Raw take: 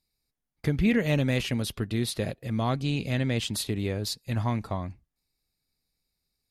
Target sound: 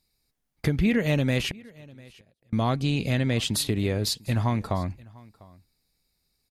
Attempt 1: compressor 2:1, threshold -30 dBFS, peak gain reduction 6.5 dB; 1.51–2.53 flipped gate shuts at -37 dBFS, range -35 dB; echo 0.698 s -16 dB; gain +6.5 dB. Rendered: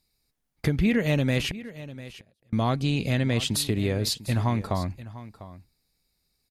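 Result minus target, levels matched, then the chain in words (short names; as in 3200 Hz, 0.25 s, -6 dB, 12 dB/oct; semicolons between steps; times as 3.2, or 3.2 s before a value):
echo-to-direct +7.5 dB
compressor 2:1, threshold -30 dBFS, peak gain reduction 6.5 dB; 1.51–2.53 flipped gate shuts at -37 dBFS, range -35 dB; echo 0.698 s -23.5 dB; gain +6.5 dB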